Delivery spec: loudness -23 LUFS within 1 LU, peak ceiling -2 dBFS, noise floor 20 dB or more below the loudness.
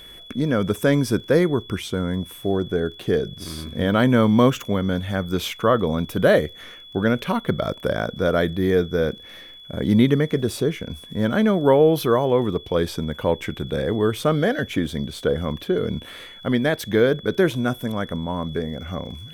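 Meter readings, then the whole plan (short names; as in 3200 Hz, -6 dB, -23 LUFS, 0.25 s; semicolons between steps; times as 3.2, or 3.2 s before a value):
ticks 26/s; steady tone 3400 Hz; tone level -41 dBFS; loudness -22.0 LUFS; peak -4.5 dBFS; loudness target -23.0 LUFS
-> de-click; notch 3400 Hz, Q 30; gain -1 dB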